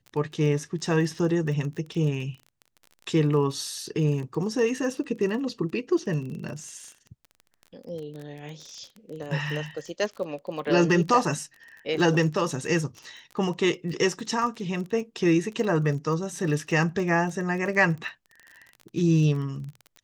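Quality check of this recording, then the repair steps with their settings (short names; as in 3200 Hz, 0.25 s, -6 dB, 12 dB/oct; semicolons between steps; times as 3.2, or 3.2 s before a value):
crackle 27/s -34 dBFS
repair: de-click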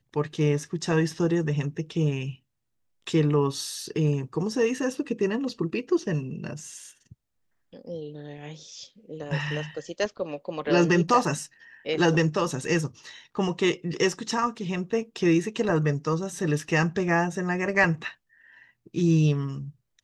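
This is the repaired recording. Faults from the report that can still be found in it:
none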